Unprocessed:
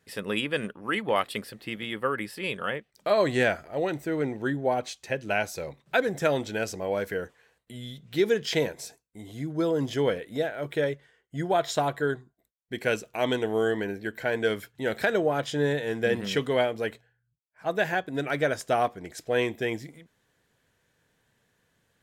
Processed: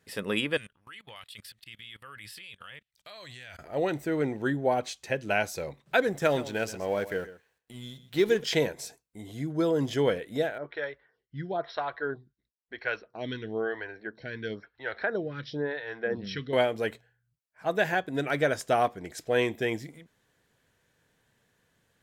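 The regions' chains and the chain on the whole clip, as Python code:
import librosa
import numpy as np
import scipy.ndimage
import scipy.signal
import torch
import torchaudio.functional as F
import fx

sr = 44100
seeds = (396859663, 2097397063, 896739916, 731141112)

y = fx.chain(x, sr, fx.curve_eq(hz=(110.0, 180.0, 380.0, 2000.0, 3500.0, 5400.0), db=(0, -13, -18, -1, 6, 2)),
    fx.level_steps(step_db=23), at=(0.57, 3.59))
y = fx.chain(y, sr, fx.law_mismatch(coded='A'),
    fx.echo_single(ms=127, db=-15.0), at=(6.12, 8.44))
y = fx.chain(y, sr, fx.cheby_ripple(hz=5700.0, ripple_db=6),
    fx.low_shelf(hz=90.0, db=10.0),
    fx.stagger_phaser(hz=1.0), at=(10.58, 16.53))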